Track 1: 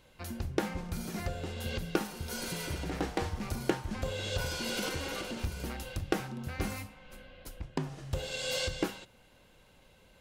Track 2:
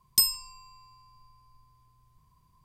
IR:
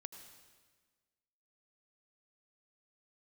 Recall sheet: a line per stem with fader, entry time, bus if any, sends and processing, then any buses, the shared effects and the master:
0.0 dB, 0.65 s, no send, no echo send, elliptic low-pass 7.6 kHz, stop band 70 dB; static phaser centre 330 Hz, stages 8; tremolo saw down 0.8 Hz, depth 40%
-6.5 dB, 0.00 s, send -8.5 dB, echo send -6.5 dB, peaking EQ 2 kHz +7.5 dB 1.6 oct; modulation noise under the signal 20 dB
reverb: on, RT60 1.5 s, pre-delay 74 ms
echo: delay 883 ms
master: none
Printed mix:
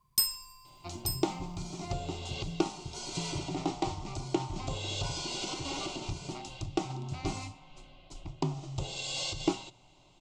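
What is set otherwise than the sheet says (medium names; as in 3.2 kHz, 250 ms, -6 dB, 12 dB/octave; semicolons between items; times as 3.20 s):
stem 1 0.0 dB -> +6.5 dB; stem 2: missing peaking EQ 2 kHz +7.5 dB 1.6 oct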